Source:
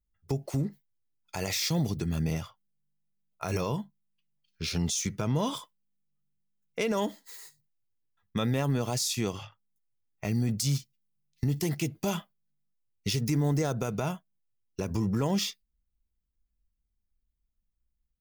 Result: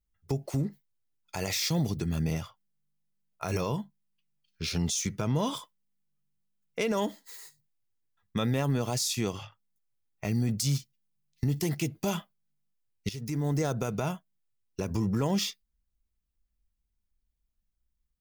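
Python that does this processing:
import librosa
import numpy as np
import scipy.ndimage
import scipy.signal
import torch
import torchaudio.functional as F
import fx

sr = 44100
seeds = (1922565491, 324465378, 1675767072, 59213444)

y = fx.edit(x, sr, fx.fade_in_from(start_s=13.09, length_s=0.56, floor_db=-13.5), tone=tone)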